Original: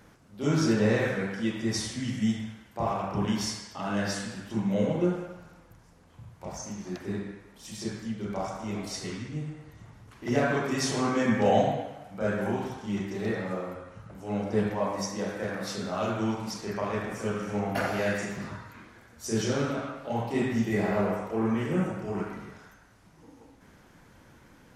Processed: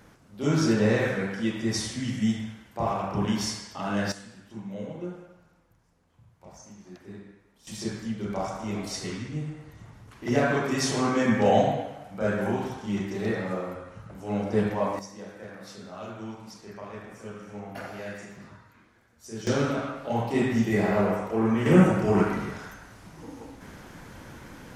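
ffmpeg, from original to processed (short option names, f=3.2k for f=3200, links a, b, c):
-af "asetnsamples=n=441:p=0,asendcmd='4.12 volume volume -10dB;7.67 volume volume 2dB;14.99 volume volume -9.5dB;19.47 volume volume 3dB;21.66 volume volume 10.5dB',volume=1.5dB"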